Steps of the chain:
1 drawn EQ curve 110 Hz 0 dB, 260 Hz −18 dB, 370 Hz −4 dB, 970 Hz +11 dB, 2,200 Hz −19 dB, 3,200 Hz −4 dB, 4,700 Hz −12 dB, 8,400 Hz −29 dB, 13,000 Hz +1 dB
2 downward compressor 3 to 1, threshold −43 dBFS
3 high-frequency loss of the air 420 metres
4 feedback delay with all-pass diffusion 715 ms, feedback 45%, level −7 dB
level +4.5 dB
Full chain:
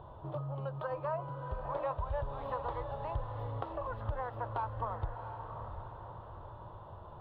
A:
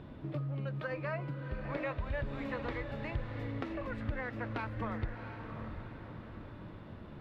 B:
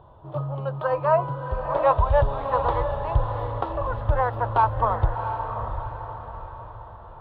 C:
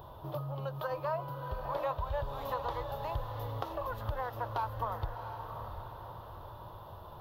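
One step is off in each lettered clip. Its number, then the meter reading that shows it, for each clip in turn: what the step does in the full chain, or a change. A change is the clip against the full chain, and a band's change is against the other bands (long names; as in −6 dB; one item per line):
1, 1 kHz band −13.0 dB
2, average gain reduction 9.0 dB
3, 4 kHz band +8.5 dB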